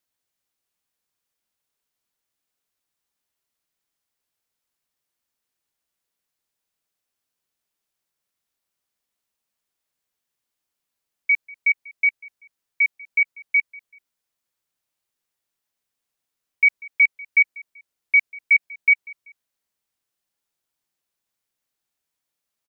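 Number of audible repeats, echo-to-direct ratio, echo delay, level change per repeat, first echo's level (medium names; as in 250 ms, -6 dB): 2, -22.5 dB, 192 ms, -9.0 dB, -23.0 dB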